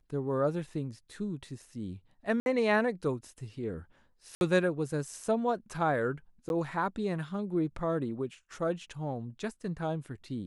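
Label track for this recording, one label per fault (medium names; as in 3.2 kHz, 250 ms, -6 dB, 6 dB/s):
2.400000	2.460000	dropout 61 ms
4.350000	4.410000	dropout 61 ms
6.490000	6.500000	dropout 11 ms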